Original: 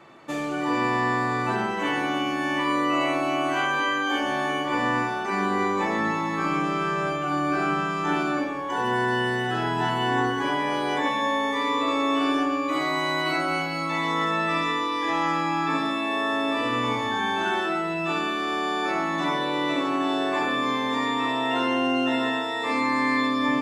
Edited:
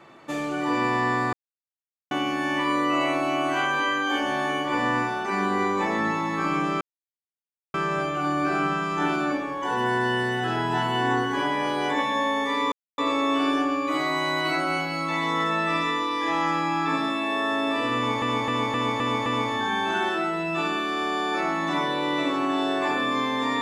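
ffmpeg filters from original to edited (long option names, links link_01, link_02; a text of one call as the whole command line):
ffmpeg -i in.wav -filter_complex "[0:a]asplit=10[link_01][link_02][link_03][link_04][link_05][link_06][link_07][link_08][link_09][link_10];[link_01]atrim=end=1.33,asetpts=PTS-STARTPTS,afade=type=out:start_time=1.326:duration=0.004:curve=hsin[link_11];[link_02]atrim=start=1.33:end=2.11,asetpts=PTS-STARTPTS,volume=0[link_12];[link_03]atrim=start=2.11:end=6.81,asetpts=PTS-STARTPTS,afade=type=in:duration=0.004:curve=hsin,afade=type=out:start_time=4.696:duration=0.004:curve=hsin,apad=pad_dur=0.93[link_13];[link_04]atrim=start=6.81:end=11.79,asetpts=PTS-STARTPTS,afade=type=in:duration=0.004:curve=hsin,afade=type=out:start_time=4.976:duration=0.004:curve=hsin,apad=pad_dur=0.26[link_14];[link_05]atrim=start=11.79:end=17.032,asetpts=PTS-STARTPTS,afade=type=in:duration=0.004:curve=hsin[link_15];[link_06]atrim=start=16.768:end=17.032[link_16];[link_07]atrim=start=16.768:end=17.032[link_17];[link_08]atrim=start=16.768:end=17.032[link_18];[link_09]atrim=start=16.768:end=17.032[link_19];[link_10]atrim=start=16.768[link_20];[link_11][link_12][link_13][link_14][link_15]concat=n=5:v=0:a=1[link_21];[link_21][link_16]acrossfade=duration=0.004:curve1=hsin:curve2=hsin[link_22];[link_22][link_17]acrossfade=duration=0.004:curve1=hsin:curve2=hsin[link_23];[link_23][link_18]acrossfade=duration=0.004:curve1=hsin:curve2=hsin[link_24];[link_24][link_19]acrossfade=duration=0.004:curve1=hsin:curve2=hsin[link_25];[link_25][link_20]acrossfade=duration=0.004:curve1=hsin:curve2=hsin" out.wav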